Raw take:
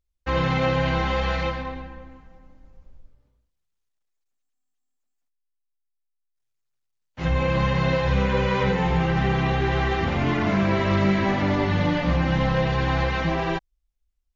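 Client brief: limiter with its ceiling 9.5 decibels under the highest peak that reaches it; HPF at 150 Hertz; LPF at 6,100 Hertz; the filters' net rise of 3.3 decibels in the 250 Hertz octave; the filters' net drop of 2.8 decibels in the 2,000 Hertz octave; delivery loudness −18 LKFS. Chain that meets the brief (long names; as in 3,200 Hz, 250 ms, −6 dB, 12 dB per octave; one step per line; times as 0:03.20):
high-pass filter 150 Hz
low-pass filter 6,100 Hz
parametric band 250 Hz +6.5 dB
parametric band 2,000 Hz −3.5 dB
level +9 dB
brickwall limiter −9 dBFS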